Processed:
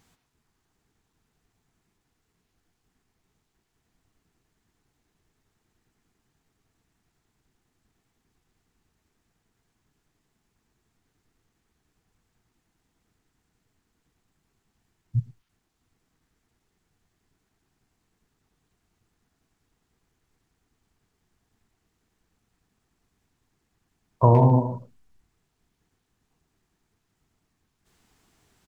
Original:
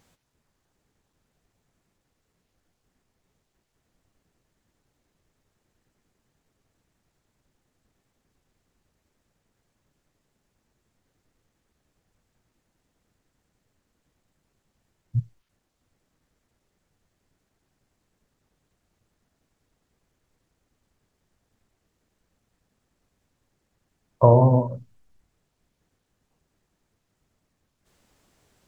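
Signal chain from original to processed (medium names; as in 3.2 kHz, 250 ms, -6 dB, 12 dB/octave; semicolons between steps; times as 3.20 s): peaking EQ 560 Hz -12.5 dB 0.25 oct; speakerphone echo 110 ms, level -8 dB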